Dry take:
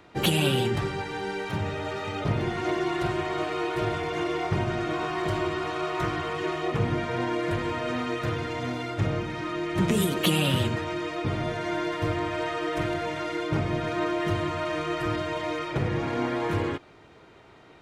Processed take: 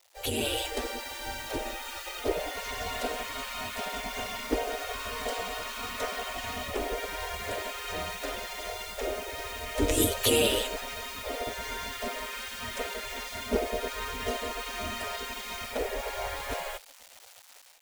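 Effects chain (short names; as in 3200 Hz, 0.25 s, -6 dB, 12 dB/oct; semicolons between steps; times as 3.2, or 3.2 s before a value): bit-crush 8-bit; EQ curve 110 Hz 0 dB, 160 Hz +13 dB, 1100 Hz -22 dB, 6900 Hz -9 dB; spectral gate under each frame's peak -25 dB weak; AGC gain up to 11 dB; gain +4.5 dB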